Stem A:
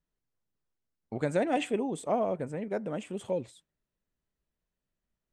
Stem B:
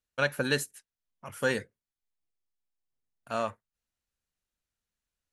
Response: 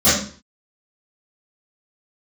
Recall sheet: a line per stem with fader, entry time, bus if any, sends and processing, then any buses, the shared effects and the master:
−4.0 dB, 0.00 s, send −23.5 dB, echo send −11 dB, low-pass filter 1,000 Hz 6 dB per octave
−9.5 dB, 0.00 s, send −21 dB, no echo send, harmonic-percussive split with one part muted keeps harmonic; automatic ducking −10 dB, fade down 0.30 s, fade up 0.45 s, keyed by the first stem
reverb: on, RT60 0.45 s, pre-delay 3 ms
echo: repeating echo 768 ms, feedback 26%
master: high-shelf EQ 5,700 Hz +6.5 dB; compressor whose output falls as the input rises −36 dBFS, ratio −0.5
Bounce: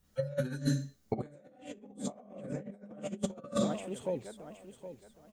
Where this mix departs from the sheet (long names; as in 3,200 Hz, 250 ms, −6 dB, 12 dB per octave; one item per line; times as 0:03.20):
stem A: missing low-pass filter 1,000 Hz 6 dB per octave
reverb return +7.5 dB